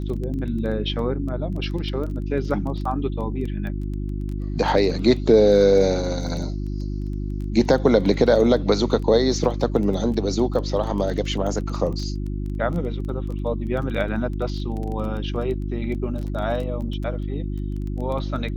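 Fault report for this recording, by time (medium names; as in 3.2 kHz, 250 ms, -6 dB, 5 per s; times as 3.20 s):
crackle 13 per s -29 dBFS
hum 50 Hz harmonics 7 -27 dBFS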